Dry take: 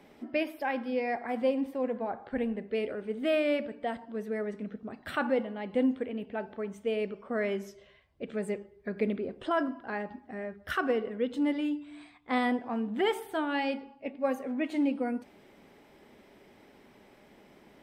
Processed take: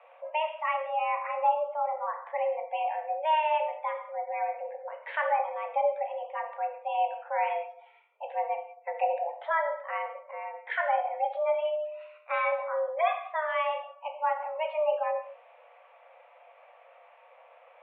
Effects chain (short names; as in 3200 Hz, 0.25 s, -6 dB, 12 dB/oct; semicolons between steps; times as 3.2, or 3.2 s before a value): spectral gate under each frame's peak -30 dB strong; mistuned SSB +310 Hz 170–2600 Hz; non-linear reverb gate 0.22 s falling, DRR 4 dB